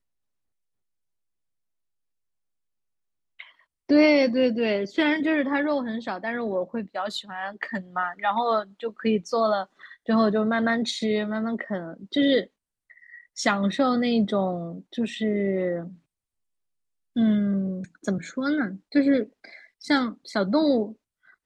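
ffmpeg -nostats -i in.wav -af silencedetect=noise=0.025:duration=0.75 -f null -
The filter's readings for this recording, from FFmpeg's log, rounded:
silence_start: 0.00
silence_end: 3.40 | silence_duration: 3.40
silence_start: 12.43
silence_end: 13.38 | silence_duration: 0.94
silence_start: 15.87
silence_end: 17.16 | silence_duration: 1.29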